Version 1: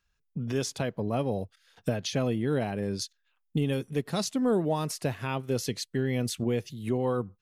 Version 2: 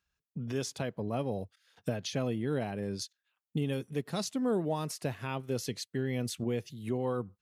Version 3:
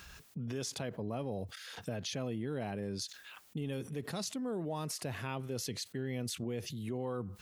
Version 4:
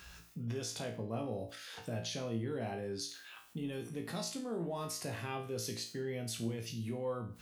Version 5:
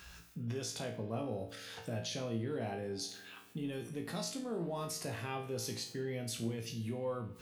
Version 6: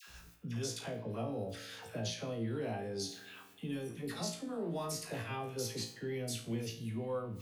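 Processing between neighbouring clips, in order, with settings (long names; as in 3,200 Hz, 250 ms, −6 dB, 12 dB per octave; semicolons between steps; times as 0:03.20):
high-pass filter 52 Hz; level −4.5 dB
envelope flattener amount 70%; level −8.5 dB
tuned comb filter 57 Hz, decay 0.41 s, harmonics all, mix 90%; level +7 dB
spring reverb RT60 2.4 s, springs 46 ms, chirp 70 ms, DRR 15.5 dB
all-pass dispersion lows, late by 83 ms, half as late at 930 Hz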